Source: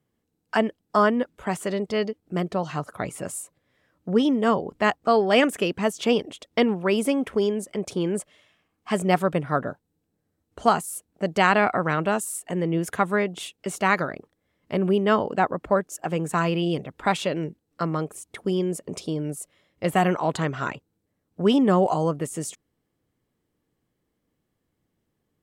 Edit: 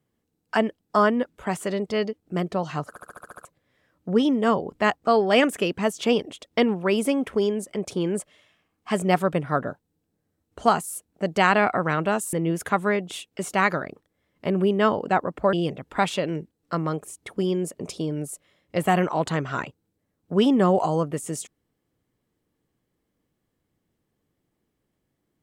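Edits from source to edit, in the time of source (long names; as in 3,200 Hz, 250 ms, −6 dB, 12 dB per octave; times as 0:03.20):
0:02.89: stutter in place 0.07 s, 8 plays
0:12.33–0:12.60: remove
0:15.80–0:16.61: remove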